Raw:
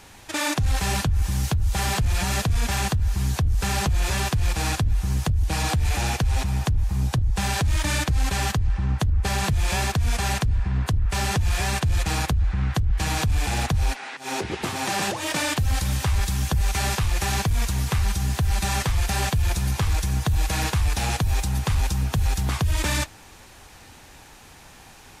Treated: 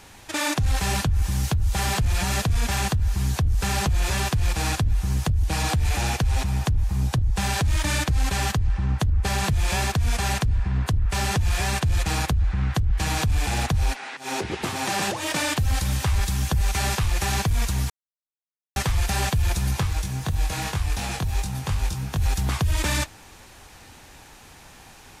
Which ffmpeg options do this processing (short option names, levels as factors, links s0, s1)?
-filter_complex "[0:a]asplit=3[s0][s1][s2];[s0]afade=t=out:st=19.81:d=0.02[s3];[s1]flanger=delay=20:depth=2.9:speed=2.8,afade=t=in:st=19.81:d=0.02,afade=t=out:st=22.21:d=0.02[s4];[s2]afade=t=in:st=22.21:d=0.02[s5];[s3][s4][s5]amix=inputs=3:normalize=0,asplit=3[s6][s7][s8];[s6]atrim=end=17.9,asetpts=PTS-STARTPTS,afade=t=out:st=17.896:d=0.004:c=hsin[s9];[s7]atrim=start=17.9:end=18.76,asetpts=PTS-STARTPTS,volume=0[s10];[s8]atrim=start=18.76,asetpts=PTS-STARTPTS,afade=t=in:d=0.004:c=hsin[s11];[s9][s10][s11]concat=n=3:v=0:a=1"